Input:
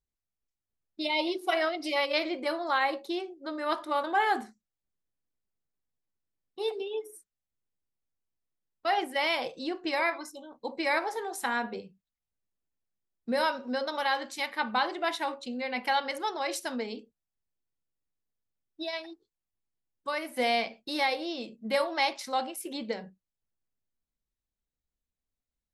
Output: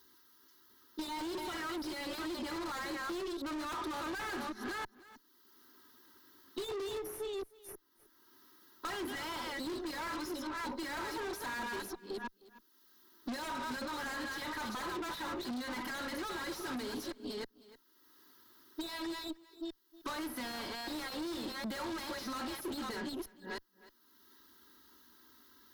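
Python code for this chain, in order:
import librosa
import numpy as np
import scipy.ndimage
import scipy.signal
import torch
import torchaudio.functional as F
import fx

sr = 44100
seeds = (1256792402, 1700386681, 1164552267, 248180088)

p1 = fx.reverse_delay(x, sr, ms=323, wet_db=-10.0)
p2 = p1 + 0.82 * np.pad(p1, (int(3.1 * sr / 1000.0), 0))[:len(p1)]
p3 = fx.rider(p2, sr, range_db=4, speed_s=0.5)
p4 = p2 + F.gain(torch.from_numpy(p3), 0.0).numpy()
p5 = scipy.signal.sosfilt(scipy.signal.butter(2, 350.0, 'highpass', fs=sr, output='sos'), p4)
p6 = fx.high_shelf(p5, sr, hz=5400.0, db=10.5)
p7 = fx.fixed_phaser(p6, sr, hz=2400.0, stages=6)
p8 = 10.0 ** (-20.5 / 20.0) * (np.abs((p7 / 10.0 ** (-20.5 / 20.0) + 3.0) % 4.0 - 2.0) - 1.0)
p9 = fx.tube_stage(p8, sr, drive_db=46.0, bias=0.45)
p10 = fx.high_shelf(p9, sr, hz=2100.0, db=-11.5)
p11 = p10 + 10.0 ** (-24.0 / 20.0) * np.pad(p10, (int(310 * sr / 1000.0), 0))[:len(p10)]
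p12 = fx.band_squash(p11, sr, depth_pct=70)
y = F.gain(torch.from_numpy(p12), 10.5).numpy()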